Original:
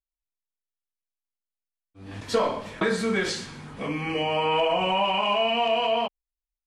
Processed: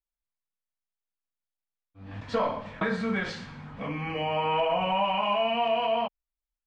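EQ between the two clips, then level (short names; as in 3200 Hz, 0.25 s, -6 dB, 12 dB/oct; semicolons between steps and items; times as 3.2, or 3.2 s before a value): air absorption 100 m; bell 370 Hz -13 dB 0.49 oct; high shelf 3700 Hz -11 dB; 0.0 dB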